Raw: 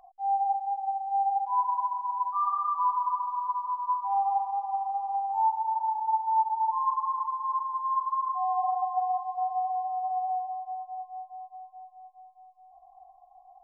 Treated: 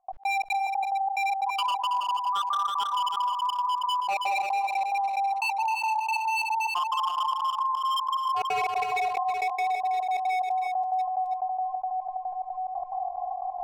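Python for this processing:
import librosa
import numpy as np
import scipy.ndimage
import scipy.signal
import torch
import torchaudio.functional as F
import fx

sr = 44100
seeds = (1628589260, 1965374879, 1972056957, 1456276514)

p1 = scipy.signal.sosfilt(scipy.signal.butter(2, 1100.0, 'lowpass', fs=sr, output='sos'), x)
p2 = fx.low_shelf(p1, sr, hz=180.0, db=-10.0)
p3 = fx.rider(p2, sr, range_db=10, speed_s=0.5)
p4 = p2 + (p3 * 10.0 ** (-1.5 / 20.0))
p5 = 10.0 ** (-23.5 / 20.0) * (np.abs((p4 / 10.0 ** (-23.5 / 20.0) + 3.0) % 4.0 - 2.0) - 1.0)
p6 = fx.step_gate(p5, sr, bpm=180, pattern='.x.xx.xx', floor_db=-60.0, edge_ms=4.5)
p7 = p6 + fx.echo_single(p6, sr, ms=324, db=-11.5, dry=0)
y = fx.env_flatten(p7, sr, amount_pct=70)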